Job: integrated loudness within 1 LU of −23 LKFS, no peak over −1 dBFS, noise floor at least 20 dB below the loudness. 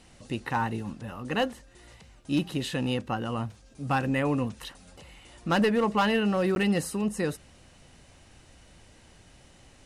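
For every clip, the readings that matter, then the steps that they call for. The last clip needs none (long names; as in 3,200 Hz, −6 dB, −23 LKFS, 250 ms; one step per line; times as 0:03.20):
share of clipped samples 0.5%; peaks flattened at −18.0 dBFS; number of dropouts 1; longest dropout 11 ms; integrated loudness −28.5 LKFS; sample peak −18.0 dBFS; target loudness −23.0 LKFS
→ clipped peaks rebuilt −18 dBFS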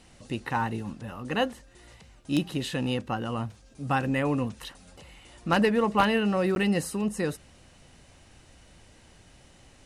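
share of clipped samples 0.0%; number of dropouts 1; longest dropout 11 ms
→ repair the gap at 0:06.55, 11 ms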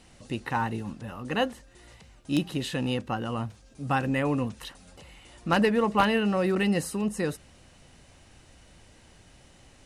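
number of dropouts 0; integrated loudness −28.0 LKFS; sample peak −9.0 dBFS; target loudness −23.0 LKFS
→ level +5 dB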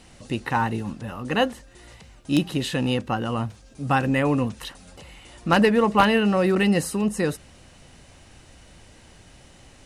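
integrated loudness −23.0 LKFS; sample peak −4.0 dBFS; background noise floor −51 dBFS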